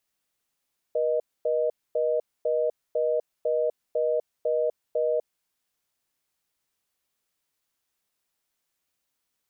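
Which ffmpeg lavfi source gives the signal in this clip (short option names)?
-f lavfi -i "aevalsrc='0.0596*(sin(2*PI*480*t)+sin(2*PI*620*t))*clip(min(mod(t,0.5),0.25-mod(t,0.5))/0.005,0,1)':d=4.33:s=44100"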